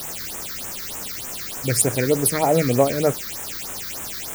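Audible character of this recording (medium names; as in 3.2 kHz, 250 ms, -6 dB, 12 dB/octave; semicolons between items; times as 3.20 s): a quantiser's noise floor 6-bit, dither triangular; phasing stages 6, 3.3 Hz, lowest notch 720–4500 Hz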